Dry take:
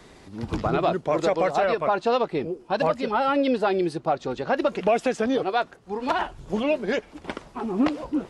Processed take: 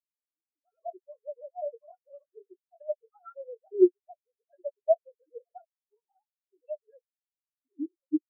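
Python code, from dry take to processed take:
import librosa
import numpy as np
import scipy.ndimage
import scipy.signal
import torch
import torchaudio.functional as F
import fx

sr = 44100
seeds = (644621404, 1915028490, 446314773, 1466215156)

y = fx.sine_speech(x, sr)
y = fx.high_shelf(y, sr, hz=2300.0, db=8.5)
y = fx.chorus_voices(y, sr, voices=6, hz=0.38, base_ms=22, depth_ms=2.5, mix_pct=30)
y = fx.low_shelf(y, sr, hz=240.0, db=9.5)
y = fx.spectral_expand(y, sr, expansion=4.0)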